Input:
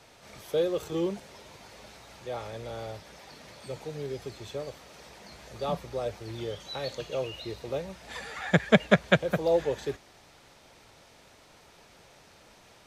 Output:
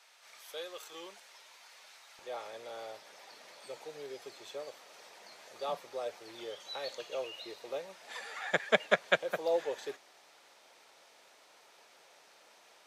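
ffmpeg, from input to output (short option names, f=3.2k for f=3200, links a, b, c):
-af "asetnsamples=n=441:p=0,asendcmd='2.19 highpass f 490',highpass=1.1k,volume=-3.5dB"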